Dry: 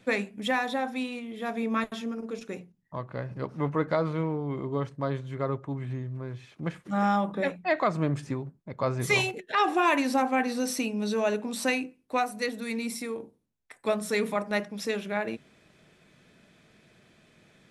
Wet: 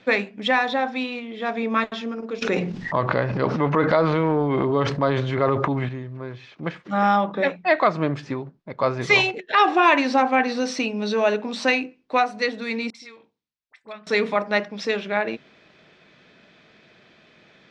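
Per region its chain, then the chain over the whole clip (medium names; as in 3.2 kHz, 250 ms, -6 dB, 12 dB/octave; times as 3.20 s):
2.42–5.89 s: transient shaper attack 0 dB, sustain +10 dB + level flattener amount 70%
12.90–14.07 s: low-pass that closes with the level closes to 1.9 kHz, closed at -25.5 dBFS + amplifier tone stack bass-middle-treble 5-5-5 + phase dispersion highs, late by 48 ms, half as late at 1.2 kHz
whole clip: low-pass 5.1 kHz 24 dB/octave; bass shelf 190 Hz -12 dB; trim +8 dB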